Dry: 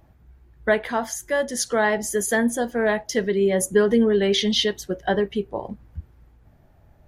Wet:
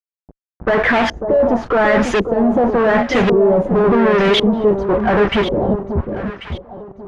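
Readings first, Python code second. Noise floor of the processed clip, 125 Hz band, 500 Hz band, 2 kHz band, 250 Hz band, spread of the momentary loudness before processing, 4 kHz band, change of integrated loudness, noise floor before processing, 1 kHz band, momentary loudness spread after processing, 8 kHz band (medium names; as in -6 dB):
under -85 dBFS, +11.0 dB, +8.0 dB, +7.0 dB, +8.0 dB, 12 LU, +2.5 dB, +7.0 dB, -56 dBFS, +10.5 dB, 12 LU, under -10 dB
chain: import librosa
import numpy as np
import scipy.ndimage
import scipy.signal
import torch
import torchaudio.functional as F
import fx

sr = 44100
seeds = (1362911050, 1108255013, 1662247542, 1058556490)

p1 = fx.env_lowpass(x, sr, base_hz=1200.0, full_db=-19.5)
p2 = fx.rider(p1, sr, range_db=3, speed_s=0.5)
p3 = p1 + (p2 * librosa.db_to_amplitude(-2.5))
p4 = fx.leveller(p3, sr, passes=2)
p5 = fx.fuzz(p4, sr, gain_db=27.0, gate_db=-36.0)
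p6 = fx.filter_lfo_lowpass(p5, sr, shape='saw_up', hz=0.91, low_hz=350.0, high_hz=3000.0, q=1.3)
y = p6 + fx.echo_alternate(p6, sr, ms=545, hz=890.0, feedback_pct=51, wet_db=-6.5, dry=0)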